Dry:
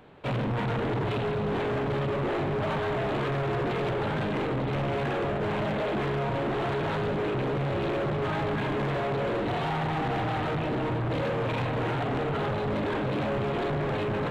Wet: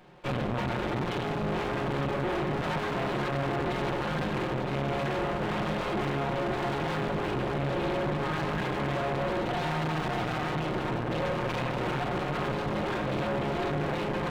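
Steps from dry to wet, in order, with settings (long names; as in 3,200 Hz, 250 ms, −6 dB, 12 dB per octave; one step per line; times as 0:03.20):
lower of the sound and its delayed copy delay 5.6 ms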